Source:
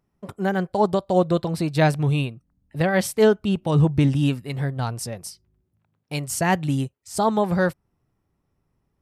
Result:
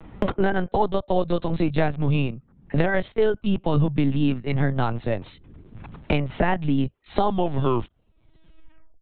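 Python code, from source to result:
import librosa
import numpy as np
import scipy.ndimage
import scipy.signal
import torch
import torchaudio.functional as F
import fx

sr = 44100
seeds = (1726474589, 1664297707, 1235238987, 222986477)

p1 = fx.tape_stop_end(x, sr, length_s=1.86)
p2 = fx.rider(p1, sr, range_db=3, speed_s=0.5)
p3 = p1 + F.gain(torch.from_numpy(p2), 0.0).numpy()
p4 = fx.lpc_vocoder(p3, sr, seeds[0], excitation='pitch_kept', order=16)
p5 = fx.band_squash(p4, sr, depth_pct=100)
y = F.gain(torch.from_numpy(p5), -6.5).numpy()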